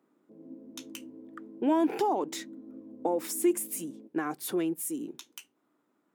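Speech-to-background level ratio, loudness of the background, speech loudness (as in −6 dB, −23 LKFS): 17.0 dB, −48.0 LKFS, −31.0 LKFS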